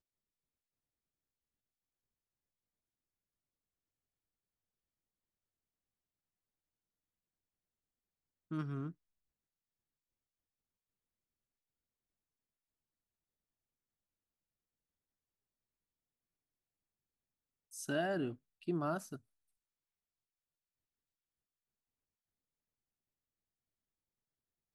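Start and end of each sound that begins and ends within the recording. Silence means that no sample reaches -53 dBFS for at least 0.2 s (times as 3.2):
8.51–8.92
17.72–18.35
18.62–19.18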